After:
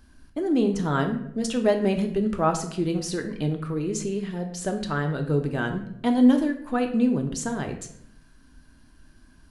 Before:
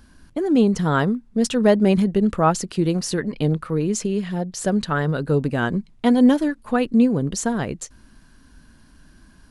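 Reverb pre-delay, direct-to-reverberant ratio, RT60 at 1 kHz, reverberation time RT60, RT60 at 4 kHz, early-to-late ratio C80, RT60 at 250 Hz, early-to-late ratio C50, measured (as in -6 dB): 3 ms, 4.5 dB, 0.65 s, 0.70 s, 0.50 s, 12.5 dB, 0.85 s, 9.5 dB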